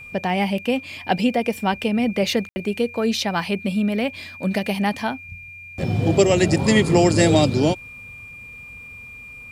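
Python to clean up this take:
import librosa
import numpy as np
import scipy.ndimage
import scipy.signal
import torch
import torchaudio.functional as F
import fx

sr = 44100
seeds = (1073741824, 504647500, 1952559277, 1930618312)

y = fx.notch(x, sr, hz=2400.0, q=30.0)
y = fx.fix_ambience(y, sr, seeds[0], print_start_s=8.98, print_end_s=9.48, start_s=2.49, end_s=2.56)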